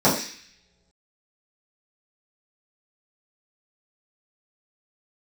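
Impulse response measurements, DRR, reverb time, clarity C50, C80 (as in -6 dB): -10.5 dB, no single decay rate, 6.5 dB, 9.5 dB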